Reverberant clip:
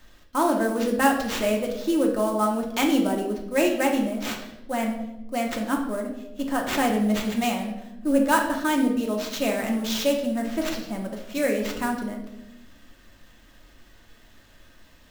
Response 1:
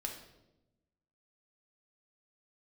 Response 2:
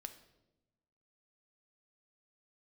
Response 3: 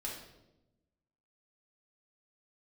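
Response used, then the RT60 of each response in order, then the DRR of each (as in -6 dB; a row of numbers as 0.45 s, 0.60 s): 1; 0.95 s, 1.0 s, 0.95 s; 1.0 dB, 7.5 dB, -4.5 dB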